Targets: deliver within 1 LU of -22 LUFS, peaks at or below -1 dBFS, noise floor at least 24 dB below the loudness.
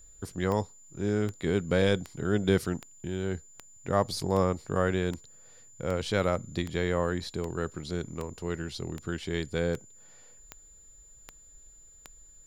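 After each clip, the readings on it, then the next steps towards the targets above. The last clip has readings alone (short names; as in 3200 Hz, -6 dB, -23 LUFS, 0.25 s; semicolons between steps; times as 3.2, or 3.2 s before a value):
clicks 16; steady tone 7100 Hz; tone level -53 dBFS; loudness -30.5 LUFS; peak -10.5 dBFS; loudness target -22.0 LUFS
-> de-click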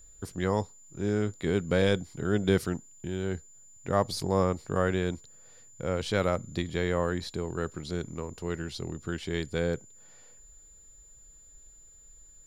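clicks 0; steady tone 7100 Hz; tone level -53 dBFS
-> notch 7100 Hz, Q 30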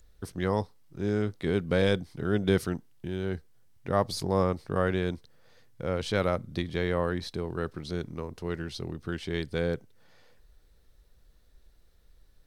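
steady tone none; loudness -30.5 LUFS; peak -10.5 dBFS; loudness target -22.0 LUFS
-> gain +8.5 dB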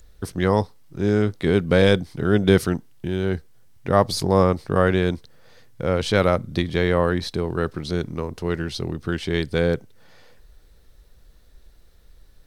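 loudness -22.0 LUFS; peak -2.0 dBFS; noise floor -52 dBFS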